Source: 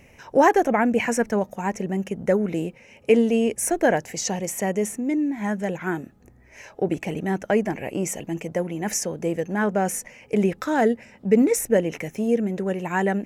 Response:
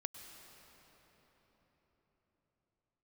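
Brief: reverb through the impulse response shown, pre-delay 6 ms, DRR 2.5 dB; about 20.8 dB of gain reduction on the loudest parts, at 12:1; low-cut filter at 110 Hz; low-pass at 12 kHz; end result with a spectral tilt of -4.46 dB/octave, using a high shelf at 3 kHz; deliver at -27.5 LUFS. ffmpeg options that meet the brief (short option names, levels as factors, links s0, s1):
-filter_complex "[0:a]highpass=110,lowpass=12000,highshelf=f=3000:g=5,acompressor=threshold=0.0224:ratio=12,asplit=2[s0][s1];[1:a]atrim=start_sample=2205,adelay=6[s2];[s1][s2]afir=irnorm=-1:irlink=0,volume=1[s3];[s0][s3]amix=inputs=2:normalize=0,volume=2.51"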